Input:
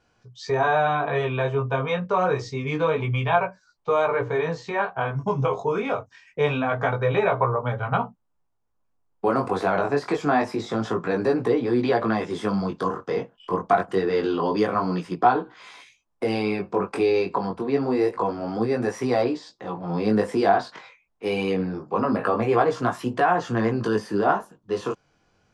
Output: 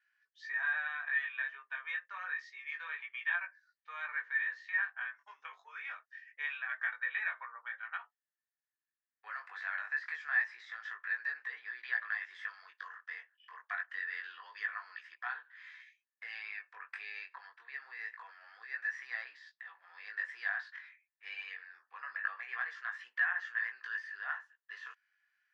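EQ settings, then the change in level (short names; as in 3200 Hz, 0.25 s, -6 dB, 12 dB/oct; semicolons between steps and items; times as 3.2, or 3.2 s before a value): ladder high-pass 1700 Hz, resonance 85%; air absorption 140 m; -1.5 dB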